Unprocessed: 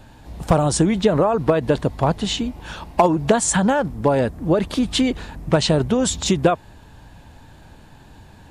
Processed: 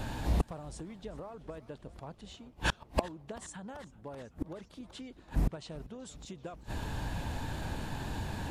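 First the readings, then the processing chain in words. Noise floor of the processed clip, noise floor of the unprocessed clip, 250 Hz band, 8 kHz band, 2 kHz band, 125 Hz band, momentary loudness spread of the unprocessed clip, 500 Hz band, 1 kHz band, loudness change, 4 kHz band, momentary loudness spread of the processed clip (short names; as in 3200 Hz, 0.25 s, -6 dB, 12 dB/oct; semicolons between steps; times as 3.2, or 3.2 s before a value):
-59 dBFS, -46 dBFS, -21.0 dB, -23.5 dB, -12.5 dB, -14.5 dB, 7 LU, -23.5 dB, -19.5 dB, -20.0 dB, -18.5 dB, 13 LU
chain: flipped gate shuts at -24 dBFS, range -35 dB; warbling echo 0.386 s, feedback 76%, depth 169 cents, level -20.5 dB; gain +7.5 dB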